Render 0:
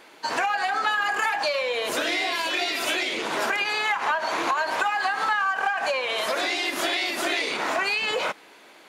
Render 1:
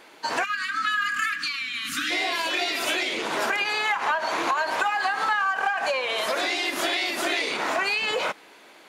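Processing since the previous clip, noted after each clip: spectral selection erased 0.44–2.11 s, 320–1100 Hz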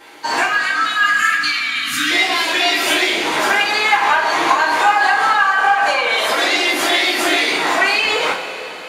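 two-slope reverb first 0.34 s, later 4.1 s, from -18 dB, DRR -7 dB; trim +2 dB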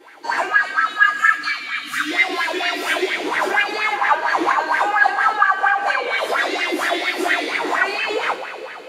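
sweeping bell 4.3 Hz 330–1900 Hz +16 dB; trim -10.5 dB

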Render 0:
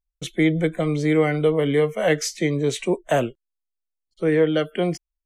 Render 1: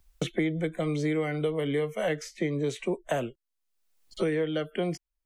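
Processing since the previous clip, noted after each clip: three bands compressed up and down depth 100%; trim -9 dB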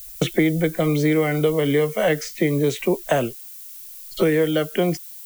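added noise violet -48 dBFS; trim +9 dB

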